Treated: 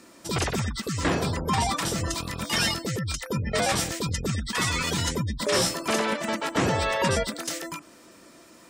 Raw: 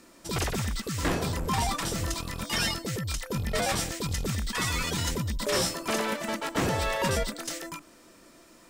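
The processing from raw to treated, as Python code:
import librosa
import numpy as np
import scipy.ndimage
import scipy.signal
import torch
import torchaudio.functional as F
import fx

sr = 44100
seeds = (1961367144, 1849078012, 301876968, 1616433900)

y = fx.spec_gate(x, sr, threshold_db=-30, keep='strong')
y = scipy.signal.sosfilt(scipy.signal.butter(2, 70.0, 'highpass', fs=sr, output='sos'), y)
y = y * librosa.db_to_amplitude(3.5)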